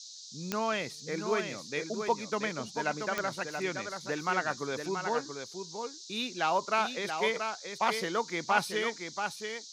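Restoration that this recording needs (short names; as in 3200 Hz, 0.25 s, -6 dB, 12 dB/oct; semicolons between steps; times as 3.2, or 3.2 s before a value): de-click; noise print and reduce 30 dB; inverse comb 0.681 s -6.5 dB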